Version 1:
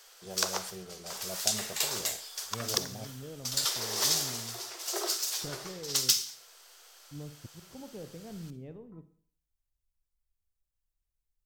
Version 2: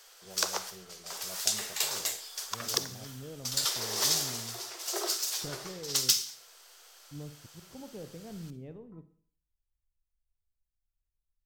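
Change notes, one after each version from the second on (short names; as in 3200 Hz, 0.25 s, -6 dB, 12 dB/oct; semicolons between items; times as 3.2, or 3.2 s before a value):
first voice -7.0 dB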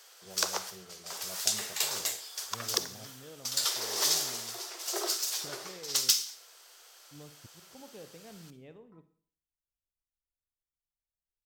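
second voice: add tilt +3.5 dB/oct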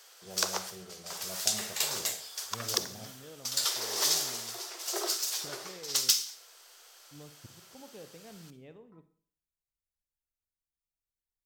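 first voice: send on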